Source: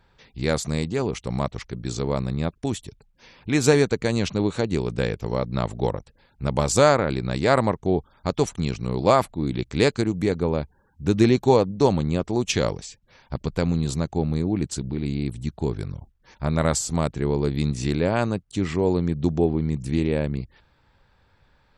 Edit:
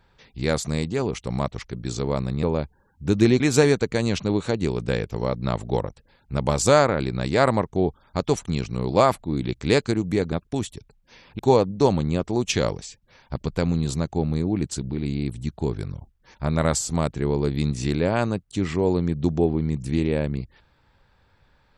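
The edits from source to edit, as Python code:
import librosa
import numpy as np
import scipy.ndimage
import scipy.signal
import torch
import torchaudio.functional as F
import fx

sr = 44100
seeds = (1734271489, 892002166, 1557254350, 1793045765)

y = fx.edit(x, sr, fx.swap(start_s=2.43, length_s=1.07, other_s=10.42, other_length_s=0.97), tone=tone)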